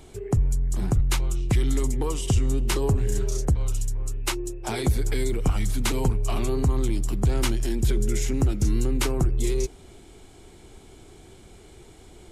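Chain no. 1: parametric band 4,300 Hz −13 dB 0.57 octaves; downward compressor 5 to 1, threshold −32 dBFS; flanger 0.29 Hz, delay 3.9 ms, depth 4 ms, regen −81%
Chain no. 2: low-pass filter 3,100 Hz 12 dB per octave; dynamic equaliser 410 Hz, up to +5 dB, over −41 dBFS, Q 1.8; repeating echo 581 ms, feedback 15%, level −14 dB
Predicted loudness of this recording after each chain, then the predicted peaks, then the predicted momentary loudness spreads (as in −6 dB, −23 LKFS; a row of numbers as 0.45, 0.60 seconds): −41.5, −25.5 LKFS; −24.0, −10.0 dBFS; 14, 7 LU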